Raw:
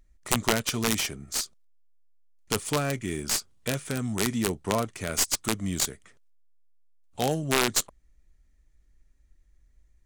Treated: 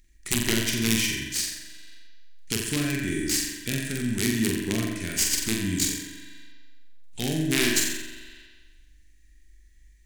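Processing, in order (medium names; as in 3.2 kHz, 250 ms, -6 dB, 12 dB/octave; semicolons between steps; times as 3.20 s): high-order bell 810 Hz -15 dB; flutter echo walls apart 7.6 m, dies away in 0.69 s; reverberation RT60 1.3 s, pre-delay 41 ms, DRR 3.5 dB; tape noise reduction on one side only encoder only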